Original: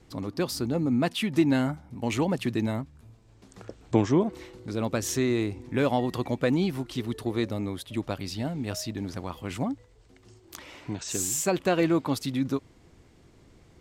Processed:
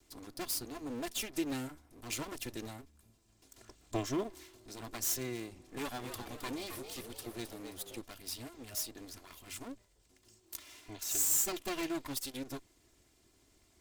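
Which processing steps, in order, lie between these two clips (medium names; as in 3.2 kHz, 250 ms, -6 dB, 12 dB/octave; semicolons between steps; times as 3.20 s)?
comb filter that takes the minimum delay 2.9 ms; pre-emphasis filter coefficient 0.8; 5.66–8.01 s: frequency-shifting echo 265 ms, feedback 42%, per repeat +86 Hz, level -8 dB; trim +1.5 dB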